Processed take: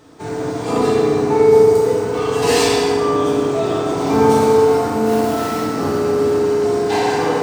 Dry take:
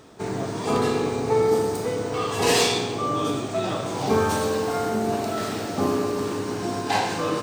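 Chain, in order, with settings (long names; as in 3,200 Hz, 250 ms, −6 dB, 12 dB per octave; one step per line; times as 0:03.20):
0:05.06–0:05.63: log-companded quantiser 4 bits
feedback delay network reverb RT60 3.8 s, high-frequency decay 0.3×, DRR −6 dB
level −1.5 dB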